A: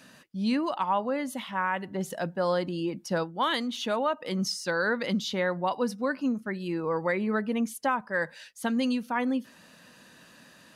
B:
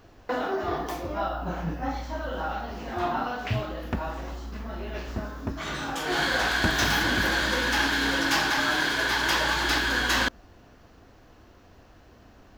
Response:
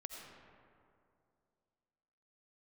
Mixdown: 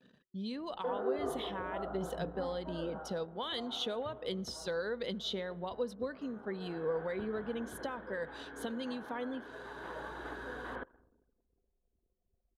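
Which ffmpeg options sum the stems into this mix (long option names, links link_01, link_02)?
-filter_complex "[0:a]equalizer=frequency=110:width_type=o:width=2:gain=4.5,acompressor=threshold=-29dB:ratio=10,volume=-9dB,asplit=3[link_01][link_02][link_03];[link_02]volume=-18.5dB[link_04];[1:a]lowpass=frequency=1500:width=0.5412,lowpass=frequency=1500:width=1.3066,lowshelf=frequency=68:gain=-5.5,adelay=550,volume=-7.5dB,afade=type=out:start_time=2.79:duration=0.39:silence=0.334965,asplit=2[link_05][link_06];[link_06]volume=-11dB[link_07];[link_03]apad=whole_len=578769[link_08];[link_05][link_08]sidechaincompress=threshold=-45dB:ratio=8:attack=16:release=1230[link_09];[2:a]atrim=start_sample=2205[link_10];[link_04][link_07]amix=inputs=2:normalize=0[link_11];[link_11][link_10]afir=irnorm=-1:irlink=0[link_12];[link_01][link_09][link_12]amix=inputs=3:normalize=0,anlmdn=0.0001,superequalizer=7b=2.82:8b=1.41:13b=2.82"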